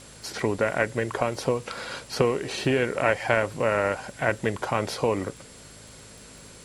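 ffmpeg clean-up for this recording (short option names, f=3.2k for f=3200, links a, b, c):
-af "adeclick=t=4,bandreject=f=52.9:t=h:w=4,bandreject=f=105.8:t=h:w=4,bandreject=f=158.7:t=h:w=4,bandreject=f=211.6:t=h:w=4,bandreject=f=264.5:t=h:w=4,bandreject=f=7.6k:w=30,afwtdn=0.004"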